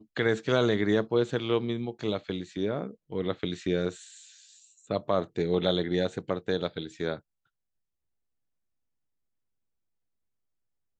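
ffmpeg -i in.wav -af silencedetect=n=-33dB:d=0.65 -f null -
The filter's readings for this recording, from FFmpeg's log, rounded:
silence_start: 3.92
silence_end: 4.90 | silence_duration: 0.99
silence_start: 7.16
silence_end: 10.99 | silence_duration: 3.83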